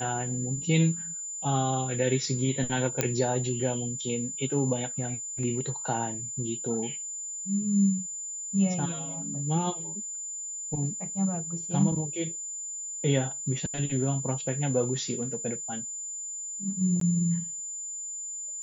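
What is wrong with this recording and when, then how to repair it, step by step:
whine 7.1 kHz -34 dBFS
3.01 s: pop -9 dBFS
17.00–17.01 s: dropout 13 ms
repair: de-click; band-stop 7.1 kHz, Q 30; interpolate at 17.00 s, 13 ms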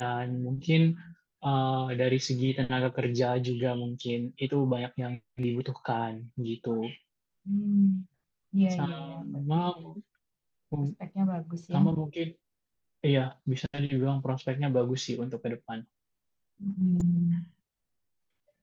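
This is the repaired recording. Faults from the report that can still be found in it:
nothing left

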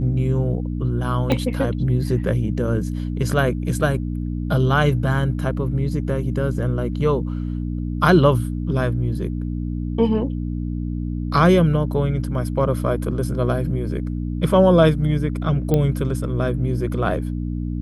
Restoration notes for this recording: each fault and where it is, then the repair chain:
hum 60 Hz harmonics 5 -25 dBFS
1.32 s: pop -8 dBFS
15.74 s: pop -8 dBFS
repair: de-click; de-hum 60 Hz, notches 5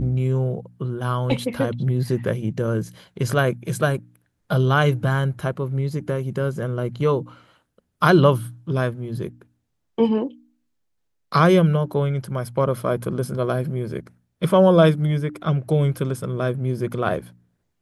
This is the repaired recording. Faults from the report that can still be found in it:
1.32 s: pop

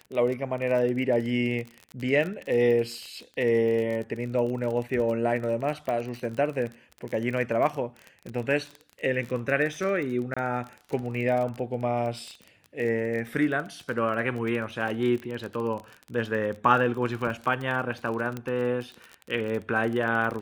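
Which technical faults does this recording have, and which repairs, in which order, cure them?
crackle 31 per s -31 dBFS
5.89 s: pop -19 dBFS
10.34–10.37 s: dropout 25 ms
18.37 s: pop -20 dBFS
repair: de-click; interpolate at 10.34 s, 25 ms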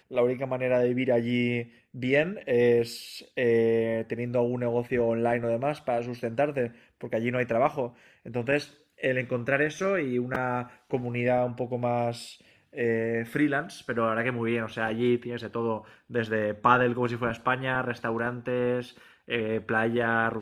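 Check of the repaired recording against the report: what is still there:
nothing left

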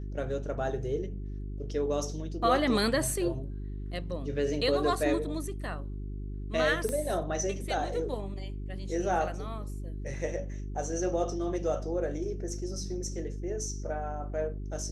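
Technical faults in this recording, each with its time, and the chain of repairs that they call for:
hum 50 Hz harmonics 8 -37 dBFS
6.89 s: pop -19 dBFS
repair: de-click; de-hum 50 Hz, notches 8

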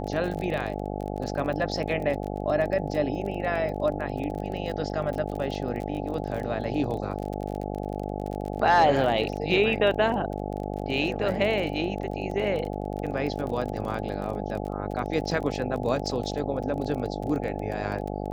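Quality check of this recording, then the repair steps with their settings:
buzz 50 Hz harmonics 17 -32 dBFS
crackle 31 per s -32 dBFS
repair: de-click; de-hum 50 Hz, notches 17

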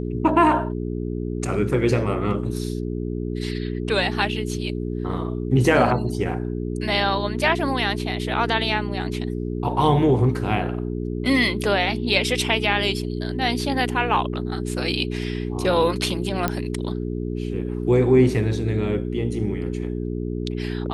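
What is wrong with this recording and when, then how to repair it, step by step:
hum 60 Hz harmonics 7 -27 dBFS
16.48 s: pop -8 dBFS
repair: de-click; de-hum 60 Hz, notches 7

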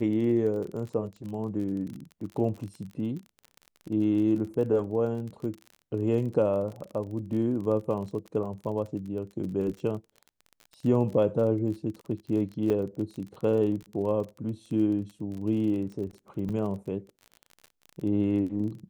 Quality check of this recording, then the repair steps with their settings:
crackle 36 per s -36 dBFS
12.70 s: dropout 3.1 ms
16.49–16.50 s: dropout 6.5 ms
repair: de-click; interpolate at 12.70 s, 3.1 ms; interpolate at 16.49 s, 6.5 ms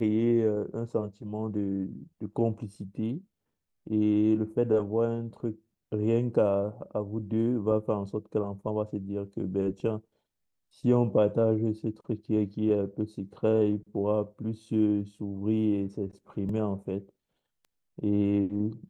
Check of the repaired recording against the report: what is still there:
nothing left

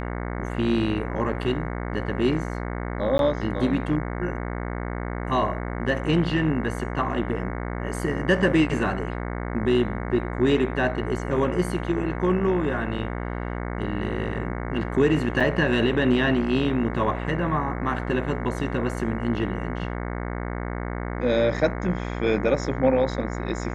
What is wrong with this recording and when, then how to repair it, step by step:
buzz 60 Hz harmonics 37 -30 dBFS
3.18–3.19 s: dropout 12 ms
15.40–15.41 s: dropout 5.6 ms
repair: de-hum 60 Hz, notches 37; interpolate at 3.18 s, 12 ms; interpolate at 15.40 s, 5.6 ms

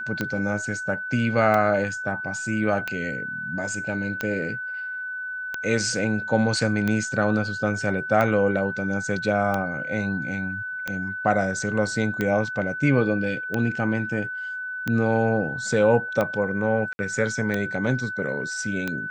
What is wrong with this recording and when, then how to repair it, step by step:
tick 45 rpm -12 dBFS
whine 1.5 kHz -29 dBFS
16.93–16.99 s: dropout 60 ms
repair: de-click; band-stop 1.5 kHz, Q 30; interpolate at 16.93 s, 60 ms

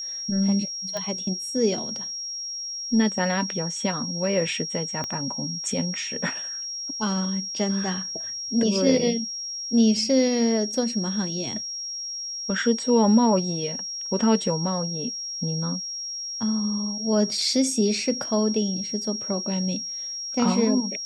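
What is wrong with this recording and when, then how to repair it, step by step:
whine 5.6 kHz -30 dBFS
0.97 s: pop -17 dBFS
5.04 s: pop -16 dBFS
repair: de-click; band-stop 5.6 kHz, Q 30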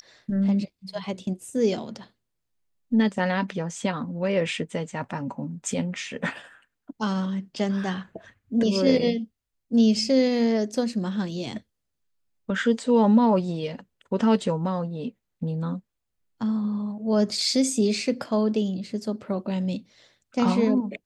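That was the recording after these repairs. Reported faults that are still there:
5.04 s: pop

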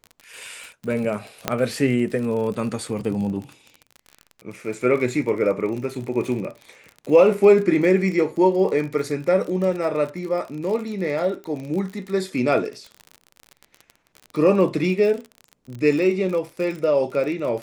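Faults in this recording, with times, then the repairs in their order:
crackle 39 per s -29 dBFS
1.48 s: pop -5 dBFS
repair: de-click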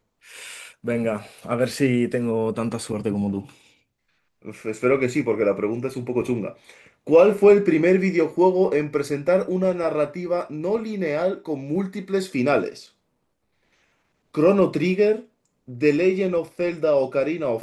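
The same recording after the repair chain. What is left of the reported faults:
nothing left

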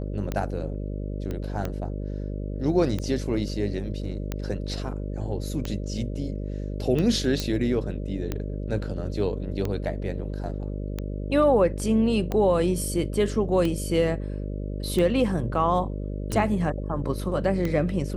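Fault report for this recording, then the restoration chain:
buzz 50 Hz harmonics 12 -31 dBFS
tick 45 rpm -15 dBFS
1.31 s: pop -20 dBFS
7.40 s: pop -13 dBFS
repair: de-click; de-hum 50 Hz, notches 12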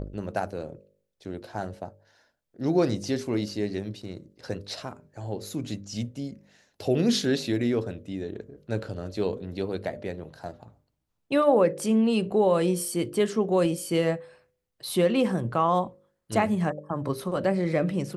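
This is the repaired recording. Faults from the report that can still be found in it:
nothing left

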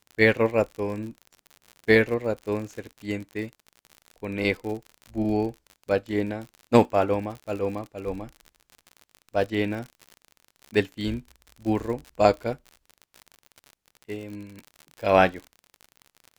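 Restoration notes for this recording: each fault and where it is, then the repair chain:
crackle 57 per s -33 dBFS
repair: de-click

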